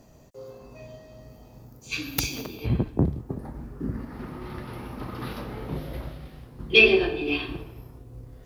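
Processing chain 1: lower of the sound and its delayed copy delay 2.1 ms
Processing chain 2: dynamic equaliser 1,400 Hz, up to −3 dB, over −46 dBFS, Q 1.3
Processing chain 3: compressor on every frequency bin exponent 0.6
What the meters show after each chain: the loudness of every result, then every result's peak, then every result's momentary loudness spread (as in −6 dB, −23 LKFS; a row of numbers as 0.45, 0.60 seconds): −27.0, −26.0, −23.5 LKFS; −3.5, −4.0, −2.0 dBFS; 25, 25, 17 LU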